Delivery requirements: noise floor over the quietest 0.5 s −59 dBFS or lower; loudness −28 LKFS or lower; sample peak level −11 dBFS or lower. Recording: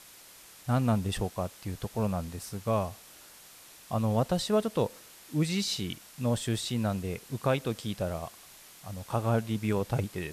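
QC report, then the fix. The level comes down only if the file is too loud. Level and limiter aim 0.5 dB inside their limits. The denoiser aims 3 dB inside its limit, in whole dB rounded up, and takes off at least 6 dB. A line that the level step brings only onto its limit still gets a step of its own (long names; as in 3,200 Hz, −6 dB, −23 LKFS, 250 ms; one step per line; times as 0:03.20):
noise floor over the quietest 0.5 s −52 dBFS: out of spec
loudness −31.0 LKFS: in spec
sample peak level −15.5 dBFS: in spec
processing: broadband denoise 10 dB, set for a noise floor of −52 dBFS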